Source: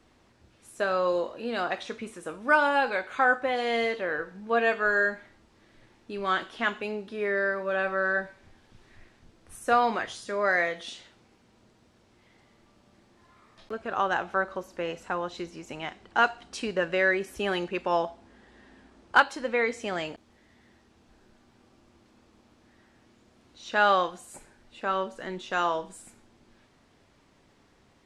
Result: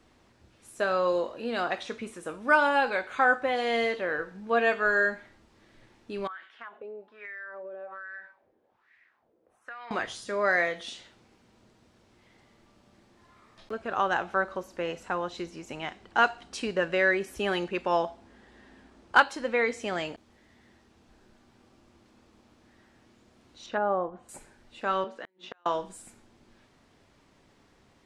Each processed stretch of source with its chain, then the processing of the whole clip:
0:06.27–0:09.91: LFO wah 1.2 Hz 450–2,100 Hz, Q 3.1 + downward compressor 16 to 1, threshold −37 dBFS
0:23.66–0:24.29: low-pass filter 1,700 Hz 6 dB per octave + treble cut that deepens with the level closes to 740 Hz, closed at −23.5 dBFS
0:25.04–0:25.66: three-way crossover with the lows and the highs turned down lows −23 dB, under 200 Hz, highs −17 dB, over 4,700 Hz + mains-hum notches 60/120/180/240/300/360/420/480/540 Hz + gate with flip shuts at −26 dBFS, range −39 dB
whole clip: no processing

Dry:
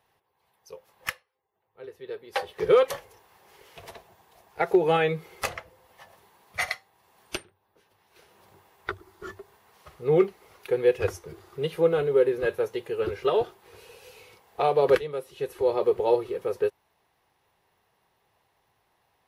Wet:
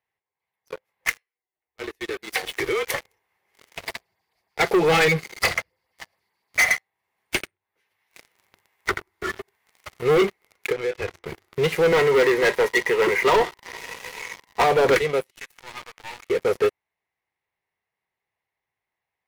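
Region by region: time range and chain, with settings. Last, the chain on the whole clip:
0:01.09–0:02.94: high-shelf EQ 2,800 Hz +11.5 dB + downward compressor 4 to 1, threshold −35 dBFS + frequency shifter −37 Hz
0:03.85–0:06.63: parametric band 4,700 Hz +14.5 dB 0.37 octaves + auto-filter notch sine 7 Hz 460–6,200 Hz
0:07.35–0:10.11: single-tap delay 83 ms −13 dB + one half of a high-frequency compander encoder only
0:10.72–0:11.26: low-pass filter 2,900 Hz + double-tracking delay 26 ms −11 dB + downward compressor 2.5 to 1, threshold −40 dBFS
0:11.92–0:14.64: high-pass filter 140 Hz 24 dB per octave + hollow resonant body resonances 990/1,900 Hz, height 17 dB, ringing for 30 ms
0:15.31–0:16.30: high-pass filter 1,000 Hz 24 dB per octave + tube saturation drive 41 dB, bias 0.55
whole clip: parametric band 2,100 Hz +12.5 dB 0.49 octaves; leveller curve on the samples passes 5; level −8.5 dB

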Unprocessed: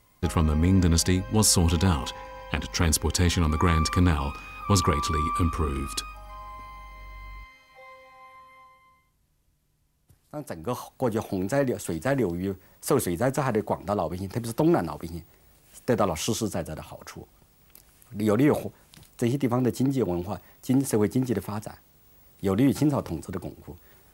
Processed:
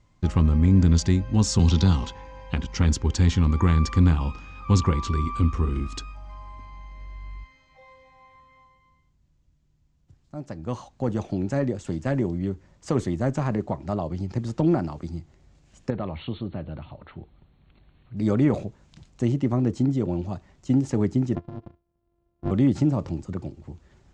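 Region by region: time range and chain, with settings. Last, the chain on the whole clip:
0:01.59–0:02.06: flat-topped bell 4,600 Hz +9 dB 1 octave + multiband upward and downward compressor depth 40%
0:15.90–0:18.17: downward compressor 1.5 to 1, threshold −34 dBFS + linear-phase brick-wall low-pass 4,400 Hz
0:21.35–0:22.51: samples sorted by size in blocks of 128 samples + low-pass filter 1,000 Hz + power curve on the samples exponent 1.4
whole clip: Chebyshev low-pass filter 7,200 Hz, order 4; low-shelf EQ 350 Hz +11.5 dB; notch filter 440 Hz, Q 12; level −5 dB

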